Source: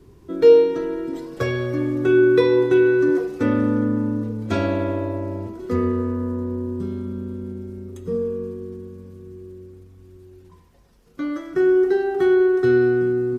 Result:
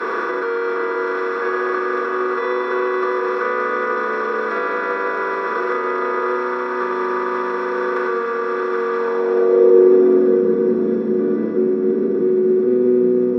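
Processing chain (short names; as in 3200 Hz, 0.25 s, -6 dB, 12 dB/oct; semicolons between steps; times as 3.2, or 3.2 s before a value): per-bin compression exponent 0.2; tilt +4 dB/oct; limiter -14.5 dBFS, peak gain reduction 11 dB; band-pass sweep 1200 Hz -> 200 Hz, 8.91–10.44; echo with dull and thin repeats by turns 0.661 s, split 1000 Hz, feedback 52%, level -7 dB; reverb RT60 0.10 s, pre-delay 3 ms, DRR -4 dB; gain -2.5 dB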